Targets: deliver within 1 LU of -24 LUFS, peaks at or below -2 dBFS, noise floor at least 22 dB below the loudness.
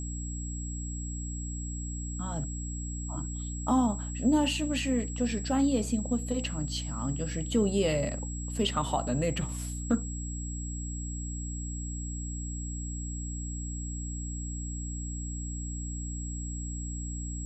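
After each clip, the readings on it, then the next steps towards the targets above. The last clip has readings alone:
hum 60 Hz; harmonics up to 300 Hz; hum level -34 dBFS; steady tone 7700 Hz; tone level -41 dBFS; loudness -32.5 LUFS; peak -14.5 dBFS; loudness target -24.0 LUFS
-> de-hum 60 Hz, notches 5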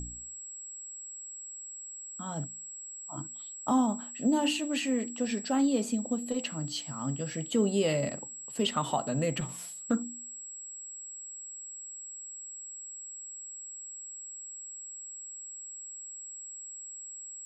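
hum none; steady tone 7700 Hz; tone level -41 dBFS
-> notch 7700 Hz, Q 30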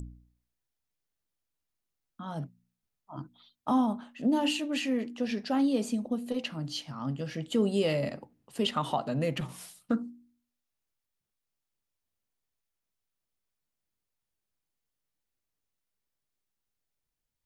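steady tone none; loudness -31.0 LUFS; peak -15.0 dBFS; loudness target -24.0 LUFS
-> gain +7 dB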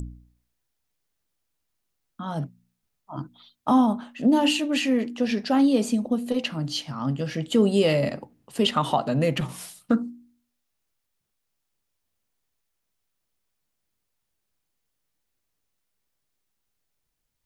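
loudness -24.0 LUFS; peak -8.0 dBFS; noise floor -79 dBFS

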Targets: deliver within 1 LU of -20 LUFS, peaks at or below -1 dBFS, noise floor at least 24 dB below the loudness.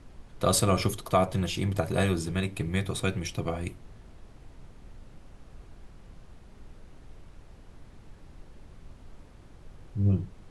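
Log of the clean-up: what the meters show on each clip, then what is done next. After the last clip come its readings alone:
noise floor -52 dBFS; noise floor target -53 dBFS; loudness -28.5 LUFS; peak -10.5 dBFS; loudness target -20.0 LUFS
-> noise print and reduce 6 dB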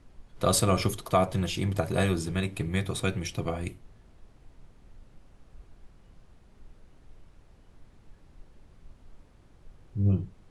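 noise floor -57 dBFS; loudness -28.5 LUFS; peak -10.5 dBFS; loudness target -20.0 LUFS
-> gain +8.5 dB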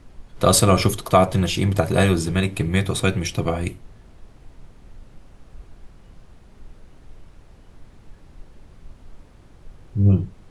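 loudness -20.0 LUFS; peak -2.0 dBFS; noise floor -49 dBFS

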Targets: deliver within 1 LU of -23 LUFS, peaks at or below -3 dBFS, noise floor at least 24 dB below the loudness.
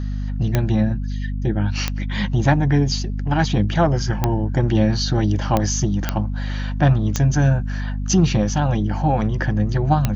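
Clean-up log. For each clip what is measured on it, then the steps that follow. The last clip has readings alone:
clicks 7; hum 50 Hz; harmonics up to 250 Hz; hum level -22 dBFS; loudness -20.0 LUFS; peak -3.5 dBFS; loudness target -23.0 LUFS
-> de-click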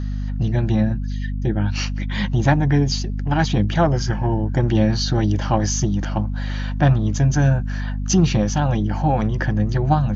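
clicks 0; hum 50 Hz; harmonics up to 250 Hz; hum level -22 dBFS
-> de-hum 50 Hz, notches 5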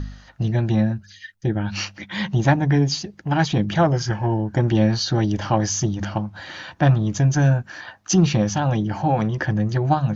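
hum none; loudness -21.0 LUFS; peak -4.5 dBFS; loudness target -23.0 LUFS
-> gain -2 dB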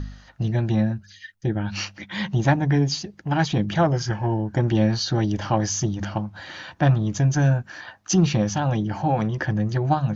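loudness -23.0 LUFS; peak -6.5 dBFS; noise floor -51 dBFS

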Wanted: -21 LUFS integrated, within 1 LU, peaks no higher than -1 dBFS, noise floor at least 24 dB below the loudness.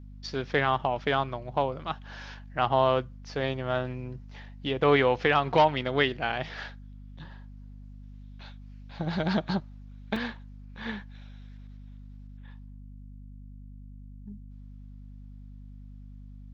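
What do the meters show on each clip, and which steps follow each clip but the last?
dropouts 1; longest dropout 3.2 ms; hum 50 Hz; harmonics up to 250 Hz; hum level -43 dBFS; loudness -28.0 LUFS; peak -9.0 dBFS; loudness target -21.0 LUFS
-> interpolate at 10.16, 3.2 ms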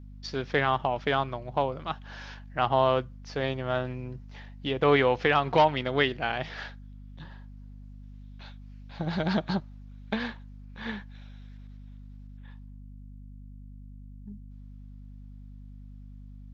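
dropouts 0; hum 50 Hz; harmonics up to 250 Hz; hum level -43 dBFS
-> de-hum 50 Hz, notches 5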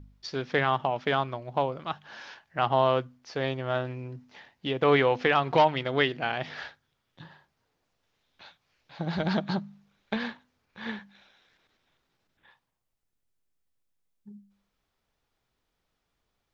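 hum none; loudness -28.0 LUFS; peak -9.0 dBFS; loudness target -21.0 LUFS
-> gain +7 dB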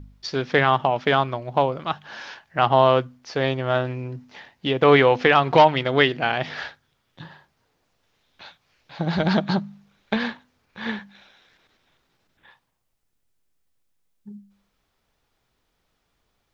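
loudness -21.0 LUFS; peak -2.0 dBFS; noise floor -73 dBFS

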